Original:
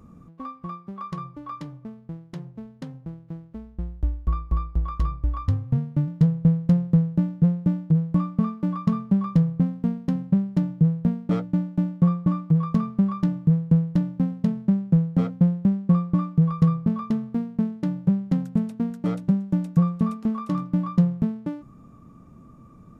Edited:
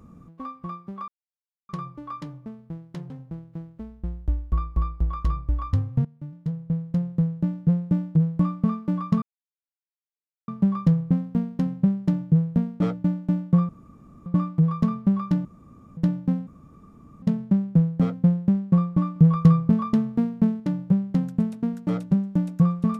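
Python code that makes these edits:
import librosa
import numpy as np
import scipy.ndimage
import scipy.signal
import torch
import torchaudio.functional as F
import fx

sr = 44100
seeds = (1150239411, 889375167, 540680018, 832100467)

y = fx.edit(x, sr, fx.insert_silence(at_s=1.08, length_s=0.61),
    fx.cut(start_s=2.49, length_s=0.36),
    fx.fade_in_from(start_s=5.8, length_s=2.0, floor_db=-19.5),
    fx.insert_silence(at_s=8.97, length_s=1.26),
    fx.insert_room_tone(at_s=12.18, length_s=0.57),
    fx.room_tone_fill(start_s=13.37, length_s=0.52),
    fx.insert_room_tone(at_s=14.39, length_s=0.75),
    fx.clip_gain(start_s=16.33, length_s=1.44, db=3.5), tone=tone)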